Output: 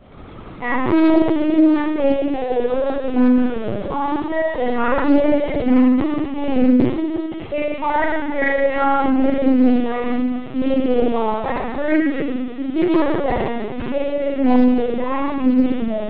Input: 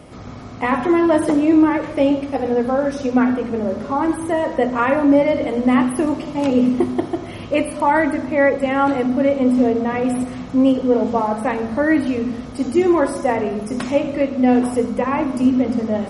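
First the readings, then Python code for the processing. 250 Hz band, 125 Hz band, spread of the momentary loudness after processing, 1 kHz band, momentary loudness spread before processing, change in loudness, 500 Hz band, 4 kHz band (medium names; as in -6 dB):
+0.5 dB, -1.5 dB, 9 LU, -1.0 dB, 7 LU, -0.5 dB, -1.0 dB, 0.0 dB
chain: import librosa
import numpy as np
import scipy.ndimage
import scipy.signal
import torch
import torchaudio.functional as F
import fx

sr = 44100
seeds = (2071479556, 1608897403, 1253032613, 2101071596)

y = fx.mod_noise(x, sr, seeds[0], snr_db=13)
y = fx.rev_schroeder(y, sr, rt60_s=1.4, comb_ms=32, drr_db=-3.5)
y = fx.lpc_vocoder(y, sr, seeds[1], excitation='pitch_kept', order=16)
y = fx.doppler_dist(y, sr, depth_ms=0.33)
y = y * 10.0 ** (-5.5 / 20.0)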